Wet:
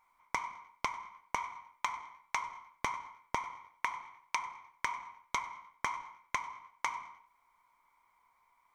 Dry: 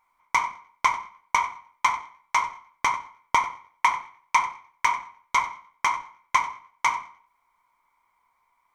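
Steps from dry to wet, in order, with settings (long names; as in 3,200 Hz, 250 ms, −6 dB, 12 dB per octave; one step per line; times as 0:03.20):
downward compressor 12 to 1, threshold −30 dBFS, peak gain reduction 16 dB
level −1.5 dB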